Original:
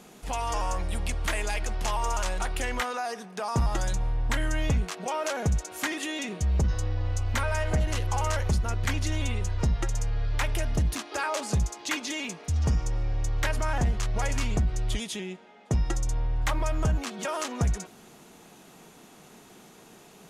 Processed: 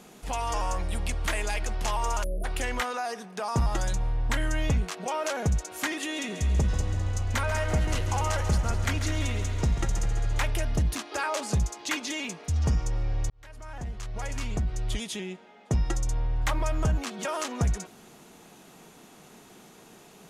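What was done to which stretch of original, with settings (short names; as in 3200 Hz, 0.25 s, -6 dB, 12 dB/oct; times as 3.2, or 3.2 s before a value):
2.23–2.44 spectral delete 700–9500 Hz
5.97–10.5 multi-head echo 69 ms, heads second and third, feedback 66%, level -12 dB
13.3–15.19 fade in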